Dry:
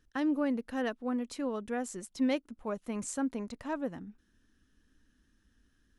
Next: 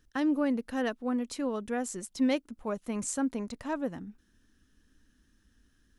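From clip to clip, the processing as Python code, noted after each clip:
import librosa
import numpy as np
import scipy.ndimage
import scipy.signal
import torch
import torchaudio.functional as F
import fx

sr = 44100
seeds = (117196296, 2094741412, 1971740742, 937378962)

y = fx.bass_treble(x, sr, bass_db=1, treble_db=3)
y = y * librosa.db_to_amplitude(2.0)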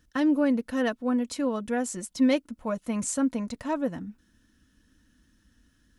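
y = fx.notch_comb(x, sr, f0_hz=400.0)
y = y * librosa.db_to_amplitude(5.0)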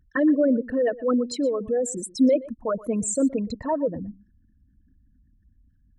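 y = fx.envelope_sharpen(x, sr, power=3.0)
y = y + 10.0 ** (-19.5 / 20.0) * np.pad(y, (int(120 * sr / 1000.0), 0))[:len(y)]
y = y * librosa.db_to_amplitude(4.0)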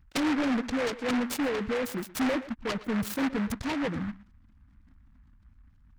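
y = fx.fixed_phaser(x, sr, hz=2600.0, stages=6)
y = 10.0 ** (-27.0 / 20.0) * np.tanh(y / 10.0 ** (-27.0 / 20.0))
y = fx.noise_mod_delay(y, sr, seeds[0], noise_hz=1300.0, depth_ms=0.16)
y = y * librosa.db_to_amplitude(3.0)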